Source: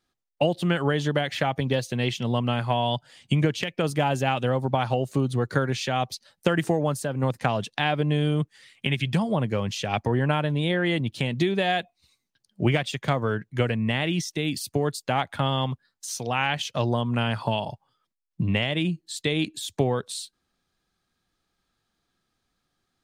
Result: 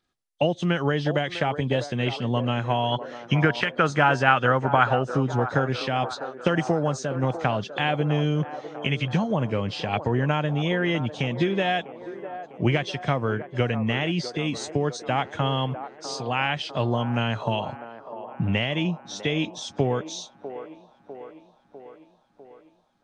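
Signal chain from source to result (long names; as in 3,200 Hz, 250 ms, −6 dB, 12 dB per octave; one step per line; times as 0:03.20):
hearing-aid frequency compression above 3,100 Hz 1.5 to 1
0:02.92–0:04.99: parametric band 1,400 Hz +15 dB 0.9 octaves
delay with a band-pass on its return 650 ms, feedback 61%, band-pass 660 Hz, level −10 dB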